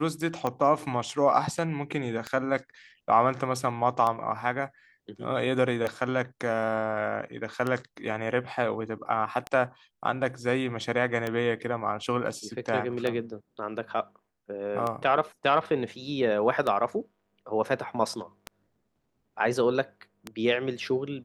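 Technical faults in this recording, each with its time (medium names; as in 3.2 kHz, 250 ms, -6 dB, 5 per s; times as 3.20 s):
tick 33 1/3 rpm -16 dBFS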